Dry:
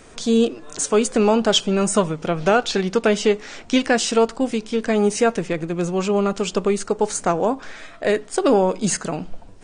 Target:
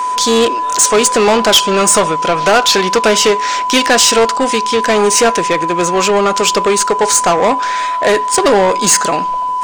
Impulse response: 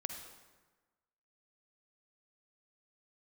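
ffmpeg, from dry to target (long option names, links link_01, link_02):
-filter_complex "[0:a]aeval=exprs='val(0)+0.0355*sin(2*PI*1000*n/s)':channel_layout=same,asplit=2[link_01][link_02];[link_02]highpass=frequency=720:poles=1,volume=20dB,asoftclip=type=tanh:threshold=-4.5dB[link_03];[link_01][link_03]amix=inputs=2:normalize=0,lowpass=frequency=6700:poles=1,volume=-6dB,bass=frequency=250:gain=-4,treble=frequency=4000:gain=5,volume=2.5dB"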